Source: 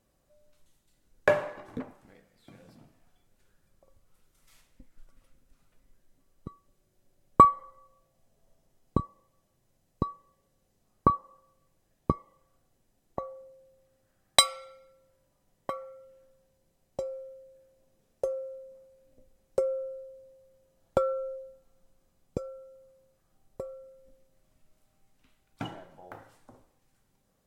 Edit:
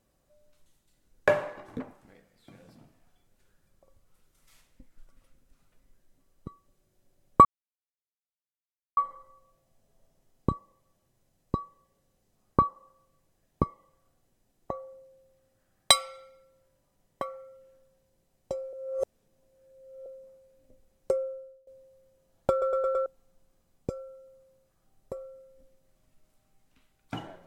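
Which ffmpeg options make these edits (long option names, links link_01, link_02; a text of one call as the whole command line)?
ffmpeg -i in.wav -filter_complex "[0:a]asplit=10[link_01][link_02][link_03][link_04][link_05][link_06][link_07][link_08][link_09][link_10];[link_01]atrim=end=7.45,asetpts=PTS-STARTPTS,afade=type=out:start_time=7.446:duration=0.004:curve=hsin,apad=pad_dur=1.52[link_11];[link_02]atrim=start=7.45:end=17.212,asetpts=PTS-STARTPTS,afade=type=in:duration=0.004:curve=hsin[link_12];[link_03]atrim=start=17.208:end=18.542,asetpts=PTS-STARTPTS,areverse[link_13];[link_04]atrim=start=18.538:end=20.15,asetpts=PTS-STARTPTS,afade=type=out:start_time=1.052:duration=0.56:silence=0.0891251[link_14];[link_05]atrim=start=20.15:end=21.102,asetpts=PTS-STARTPTS,afade=type=in:duration=0.004:curve=hsin:silence=0.0891251[link_15];[link_06]atrim=start=20.988:end=21.102[link_16];[link_07]atrim=start=20.988:end=21.102[link_17];[link_08]atrim=start=20.988:end=21.102[link_18];[link_09]atrim=start=20.988:end=21.102[link_19];[link_10]atrim=start=21.538[link_20];[link_11][link_12]concat=n=2:v=0:a=1[link_21];[link_21][link_13]acrossfade=duration=0.004:curve1=hsin:curve2=hsin[link_22];[link_14][link_15]concat=n=2:v=0:a=1[link_23];[link_22][link_23]acrossfade=duration=0.004:curve1=hsin:curve2=hsin[link_24];[link_24][link_16]acrossfade=duration=0.004:curve1=hsin:curve2=hsin[link_25];[link_25][link_17]acrossfade=duration=0.004:curve1=hsin:curve2=hsin[link_26];[link_26][link_18]acrossfade=duration=0.004:curve1=hsin:curve2=hsin[link_27];[link_27][link_19]acrossfade=duration=0.004:curve1=hsin:curve2=hsin[link_28];[link_28][link_20]acrossfade=duration=0.004:curve1=hsin:curve2=hsin" out.wav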